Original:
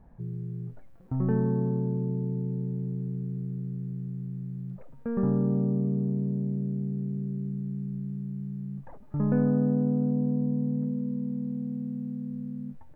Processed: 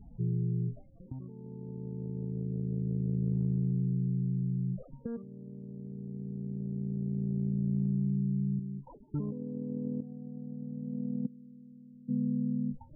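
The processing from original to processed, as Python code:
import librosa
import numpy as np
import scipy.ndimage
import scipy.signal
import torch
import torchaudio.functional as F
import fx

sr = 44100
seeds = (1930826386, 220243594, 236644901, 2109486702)

y = fx.cheby_harmonics(x, sr, harmonics=(5, 8), levels_db=(-38, -44), full_scale_db=-13.0)
y = fx.cheby_ripple(y, sr, hz=1400.0, ripple_db=9, at=(8.59, 10.02))
y = fx.spec_topn(y, sr, count=16)
y = fx.comb_fb(y, sr, f0_hz=340.0, decay_s=0.19, harmonics='all', damping=0.0, mix_pct=100, at=(11.25, 12.08), fade=0.02)
y = fx.over_compress(y, sr, threshold_db=-33.0, ratio=-0.5)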